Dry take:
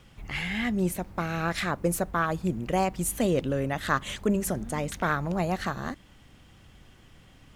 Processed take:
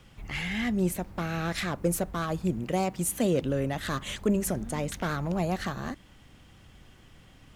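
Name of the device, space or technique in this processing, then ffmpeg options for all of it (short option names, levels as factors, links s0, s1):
one-band saturation: -filter_complex "[0:a]asettb=1/sr,asplit=3[s0][s1][s2];[s0]atrim=end=2.644[s3];[s1]atrim=start=2.64:end=3.43,asetpts=PTS-STARTPTS,afade=t=in:d=0.004:c=qsin,afade=t=out:st=0.786:d=0.004:c=qsin,highpass=87[s4];[s2]atrim=start=3.426[s5];[s3][s4]acrossfade=d=0.004:c1=hsin:c2=qsin[s6];[s6][s5]acrossfade=d=0.004:c1=qsin:c2=hsin,acrossover=split=570|3000[s7][s8][s9];[s8]asoftclip=type=tanh:threshold=0.0282[s10];[s7][s10][s9]amix=inputs=3:normalize=0"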